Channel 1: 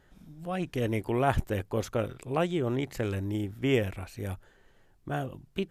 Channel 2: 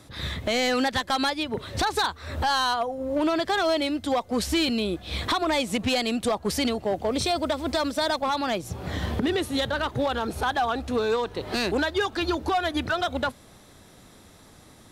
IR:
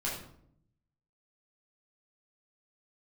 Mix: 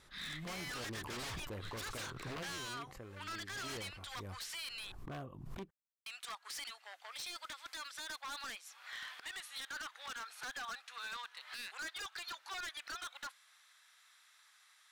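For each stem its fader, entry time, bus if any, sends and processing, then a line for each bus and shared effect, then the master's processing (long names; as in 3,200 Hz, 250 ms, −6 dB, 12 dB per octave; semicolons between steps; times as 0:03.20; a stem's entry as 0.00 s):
0:02.30 −13.5 dB → 0:02.66 −21 dB → 0:03.55 −21 dB → 0:04.26 −12.5 dB, 0.00 s, no send, parametric band 1,100 Hz +11.5 dB 0.37 octaves; background raised ahead of every attack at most 54 dB per second
−4.0 dB, 0.00 s, muted 0:04.92–0:06.06, no send, high-pass filter 1,400 Hz 24 dB per octave; high-shelf EQ 11,000 Hz −6 dB; brickwall limiter −23.5 dBFS, peak gain reduction 8 dB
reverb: not used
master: high-shelf EQ 2,400 Hz −6.5 dB; wave folding −38 dBFS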